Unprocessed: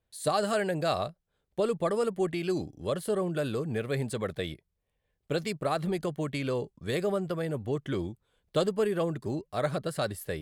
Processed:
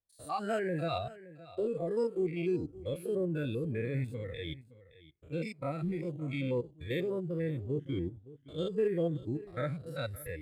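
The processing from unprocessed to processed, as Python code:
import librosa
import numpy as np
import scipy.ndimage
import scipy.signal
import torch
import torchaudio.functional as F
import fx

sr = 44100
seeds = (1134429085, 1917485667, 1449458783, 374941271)

y = fx.spec_steps(x, sr, hold_ms=100)
y = fx.noise_reduce_blind(y, sr, reduce_db=16)
y = y + 10.0 ** (-18.0 / 20.0) * np.pad(y, (int(568 * sr / 1000.0), 0))[:len(y)]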